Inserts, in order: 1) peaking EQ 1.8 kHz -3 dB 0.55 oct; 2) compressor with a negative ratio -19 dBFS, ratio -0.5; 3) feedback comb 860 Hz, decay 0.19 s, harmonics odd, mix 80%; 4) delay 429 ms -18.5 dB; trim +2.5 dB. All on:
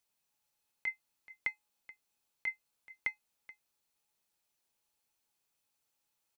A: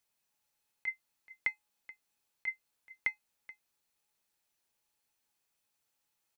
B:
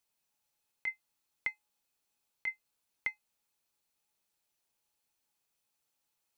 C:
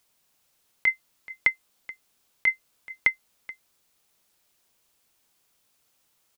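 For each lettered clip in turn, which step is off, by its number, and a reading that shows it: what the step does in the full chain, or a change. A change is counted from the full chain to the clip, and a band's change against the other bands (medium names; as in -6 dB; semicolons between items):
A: 1, loudness change +1.5 LU; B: 4, momentary loudness spread change -14 LU; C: 3, 1 kHz band -1.5 dB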